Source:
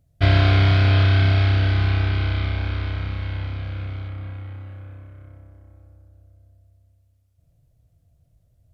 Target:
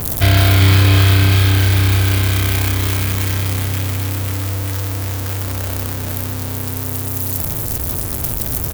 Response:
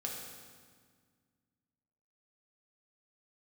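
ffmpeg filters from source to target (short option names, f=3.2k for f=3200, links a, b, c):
-af "aeval=exprs='val(0)+0.5*0.0794*sgn(val(0))':c=same,aemphasis=mode=production:type=50fm,aecho=1:1:397:0.562,volume=2.5dB"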